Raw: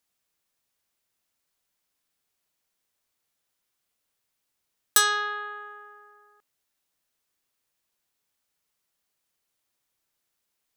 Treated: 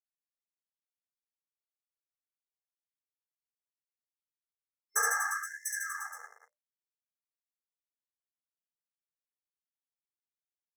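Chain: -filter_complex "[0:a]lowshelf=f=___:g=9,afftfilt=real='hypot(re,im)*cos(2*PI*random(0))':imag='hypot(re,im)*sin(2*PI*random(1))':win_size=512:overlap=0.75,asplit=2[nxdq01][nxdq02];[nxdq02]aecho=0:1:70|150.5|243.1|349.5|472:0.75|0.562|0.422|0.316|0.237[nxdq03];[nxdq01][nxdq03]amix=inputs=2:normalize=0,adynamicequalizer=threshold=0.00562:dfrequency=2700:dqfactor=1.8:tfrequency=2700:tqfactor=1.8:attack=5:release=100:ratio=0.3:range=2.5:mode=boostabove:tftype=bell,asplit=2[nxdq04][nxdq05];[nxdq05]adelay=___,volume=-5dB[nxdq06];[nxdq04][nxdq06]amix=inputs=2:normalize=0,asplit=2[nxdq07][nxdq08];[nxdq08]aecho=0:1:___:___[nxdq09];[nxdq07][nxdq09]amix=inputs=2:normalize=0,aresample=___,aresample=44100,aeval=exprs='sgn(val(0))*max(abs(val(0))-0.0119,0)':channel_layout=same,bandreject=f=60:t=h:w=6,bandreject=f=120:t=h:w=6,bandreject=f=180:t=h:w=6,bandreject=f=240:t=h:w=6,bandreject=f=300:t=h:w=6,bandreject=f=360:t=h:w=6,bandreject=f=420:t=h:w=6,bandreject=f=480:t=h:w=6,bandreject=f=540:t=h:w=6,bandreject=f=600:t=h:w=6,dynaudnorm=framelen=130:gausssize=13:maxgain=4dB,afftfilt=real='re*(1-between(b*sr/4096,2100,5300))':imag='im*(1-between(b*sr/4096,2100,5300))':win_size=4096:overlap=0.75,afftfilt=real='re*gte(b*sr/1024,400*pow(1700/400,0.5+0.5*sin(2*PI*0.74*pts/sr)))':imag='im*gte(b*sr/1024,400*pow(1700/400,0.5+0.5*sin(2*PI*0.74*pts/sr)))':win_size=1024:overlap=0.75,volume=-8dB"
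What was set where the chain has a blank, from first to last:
390, 13, 695, 0.562, 32000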